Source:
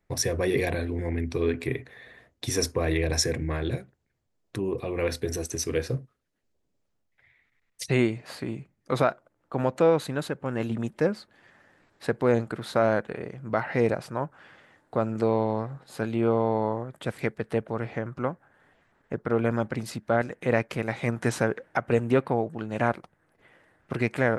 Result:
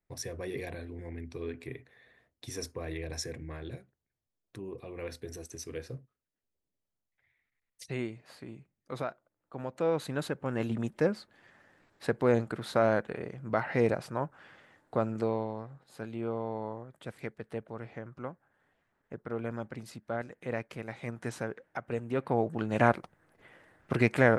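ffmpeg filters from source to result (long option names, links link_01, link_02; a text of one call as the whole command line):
ffmpeg -i in.wav -af "volume=9dB,afade=type=in:start_time=9.72:duration=0.51:silence=0.334965,afade=type=out:start_time=14.96:duration=0.58:silence=0.398107,afade=type=in:start_time=22.13:duration=0.41:silence=0.251189" out.wav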